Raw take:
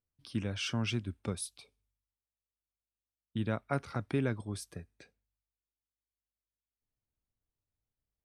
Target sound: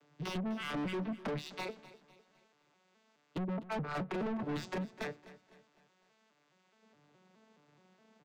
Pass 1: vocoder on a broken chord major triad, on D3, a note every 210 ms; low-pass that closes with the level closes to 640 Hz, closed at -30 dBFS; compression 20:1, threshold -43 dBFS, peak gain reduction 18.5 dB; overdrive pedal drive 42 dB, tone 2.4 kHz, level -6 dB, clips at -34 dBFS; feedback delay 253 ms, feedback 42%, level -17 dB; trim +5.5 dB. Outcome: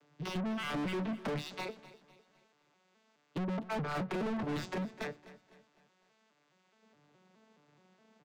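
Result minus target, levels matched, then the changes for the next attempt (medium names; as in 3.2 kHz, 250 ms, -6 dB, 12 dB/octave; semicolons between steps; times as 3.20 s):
compression: peak gain reduction -9 dB
change: compression 20:1, threshold -52.5 dBFS, peak gain reduction 27.5 dB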